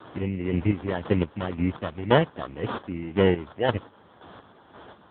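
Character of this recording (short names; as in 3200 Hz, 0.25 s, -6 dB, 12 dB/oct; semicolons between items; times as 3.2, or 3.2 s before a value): a quantiser's noise floor 8-bit, dither triangular; chopped level 1.9 Hz, depth 60%, duty 35%; aliases and images of a low sample rate 2400 Hz, jitter 0%; AMR-NB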